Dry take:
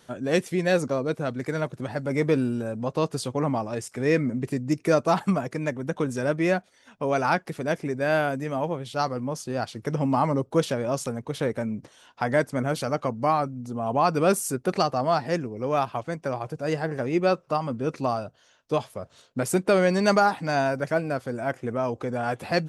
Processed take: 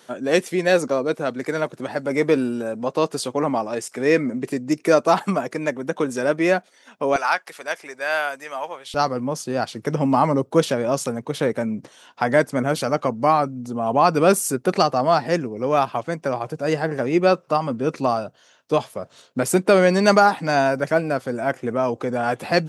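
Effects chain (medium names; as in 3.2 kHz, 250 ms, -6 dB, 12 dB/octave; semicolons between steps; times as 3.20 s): high-pass 250 Hz 12 dB/octave, from 7.16 s 920 Hz, from 8.94 s 150 Hz; trim +5.5 dB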